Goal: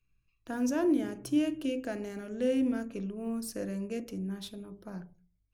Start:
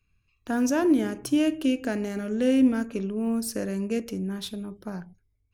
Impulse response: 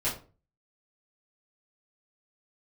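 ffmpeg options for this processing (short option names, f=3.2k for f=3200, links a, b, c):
-filter_complex "[0:a]asplit=2[a][b];[b]lowpass=1.1k[c];[1:a]atrim=start_sample=2205,asetrate=48510,aresample=44100,lowpass=1.4k[d];[c][d]afir=irnorm=-1:irlink=0,volume=-12.5dB[e];[a][e]amix=inputs=2:normalize=0,volume=-8dB"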